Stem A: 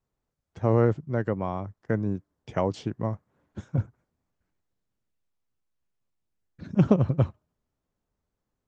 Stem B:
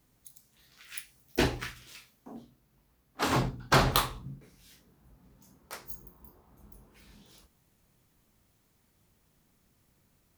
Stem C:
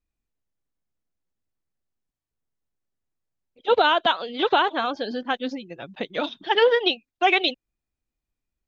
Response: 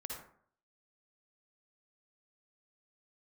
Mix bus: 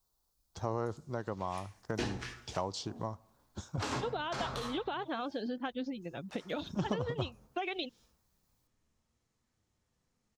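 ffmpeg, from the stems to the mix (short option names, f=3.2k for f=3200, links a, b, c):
-filter_complex "[0:a]equalizer=f=125:t=o:w=1:g=-10,equalizer=f=250:t=o:w=1:g=-7,equalizer=f=500:t=o:w=1:g=-6,equalizer=f=1k:t=o:w=1:g=4,equalizer=f=2k:t=o:w=1:g=-11,equalizer=f=4k:t=o:w=1:g=4,aexciter=amount=1.3:drive=9.3:freq=4k,volume=2.5dB,asplit=3[a][b][c];[b]volume=-24dB[d];[1:a]flanger=delay=8.4:depth=1.9:regen=65:speed=0.7:shape=triangular,lowpass=f=6.8k:t=q:w=1.5,adelay=600,volume=-1.5dB,asplit=2[e][f];[f]volume=-3.5dB[g];[2:a]lowshelf=f=340:g=10,acompressor=threshold=-20dB:ratio=6,adelay=350,volume=-7.5dB[h];[c]apad=whole_len=483854[i];[e][i]sidechaingate=range=-33dB:threshold=-55dB:ratio=16:detection=peak[j];[3:a]atrim=start_sample=2205[k];[d][g]amix=inputs=2:normalize=0[l];[l][k]afir=irnorm=-1:irlink=0[m];[a][j][h][m]amix=inputs=4:normalize=0,acompressor=threshold=-37dB:ratio=2"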